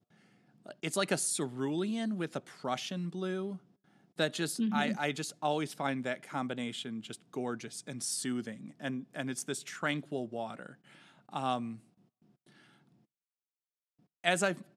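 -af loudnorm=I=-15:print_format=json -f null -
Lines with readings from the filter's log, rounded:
"input_i" : "-34.9",
"input_tp" : "-10.9",
"input_lra" : "6.8",
"input_thresh" : "-46.1",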